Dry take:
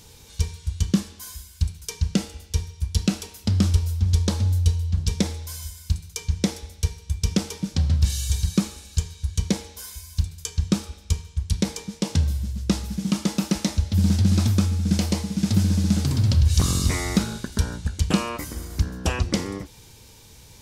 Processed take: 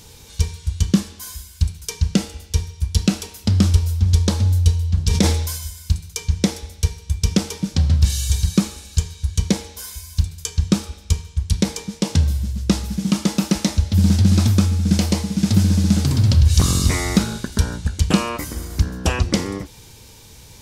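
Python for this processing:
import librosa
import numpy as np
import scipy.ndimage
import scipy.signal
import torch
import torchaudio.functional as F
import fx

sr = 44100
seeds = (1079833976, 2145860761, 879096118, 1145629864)

y = fx.sustainer(x, sr, db_per_s=44.0, at=(5.09, 5.57), fade=0.02)
y = F.gain(torch.from_numpy(y), 4.5).numpy()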